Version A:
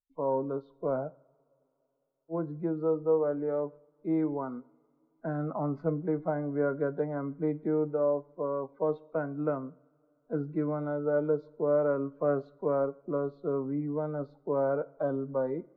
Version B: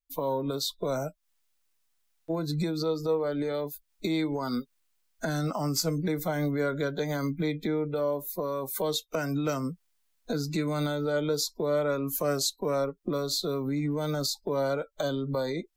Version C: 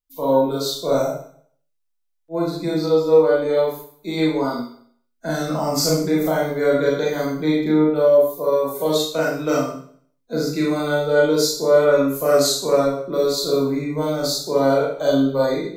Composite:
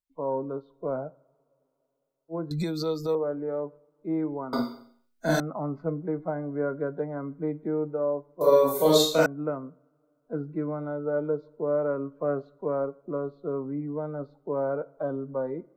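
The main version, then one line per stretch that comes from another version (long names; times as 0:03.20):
A
0:02.51–0:03.15: punch in from B
0:04.53–0:05.40: punch in from C
0:08.41–0:09.26: punch in from C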